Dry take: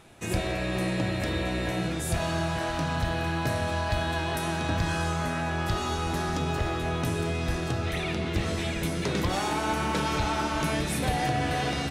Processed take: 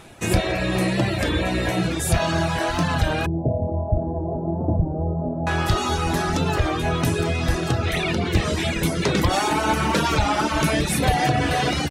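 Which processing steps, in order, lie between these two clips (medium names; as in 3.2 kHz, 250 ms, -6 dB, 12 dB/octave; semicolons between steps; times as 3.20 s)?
3.26–5.47 s: steep low-pass 720 Hz 36 dB/octave; reverb removal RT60 0.82 s; warped record 33 1/3 rpm, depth 100 cents; trim +9 dB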